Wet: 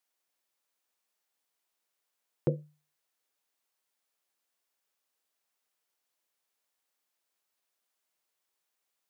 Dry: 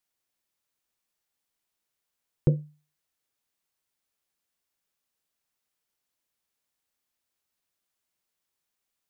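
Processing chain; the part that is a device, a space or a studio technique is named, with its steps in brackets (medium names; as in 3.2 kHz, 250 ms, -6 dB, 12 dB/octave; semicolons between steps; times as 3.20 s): filter by subtraction (in parallel: low-pass 600 Hz 12 dB/octave + polarity flip)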